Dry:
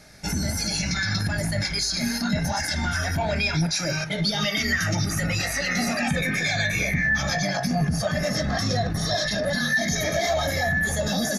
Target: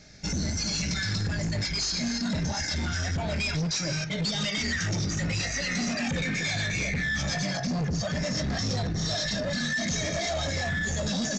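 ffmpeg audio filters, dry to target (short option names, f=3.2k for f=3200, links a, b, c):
-af "equalizer=f=1k:w=0.8:g=-8.5,aresample=16000,volume=25.5dB,asoftclip=hard,volume=-25.5dB,aresample=44100"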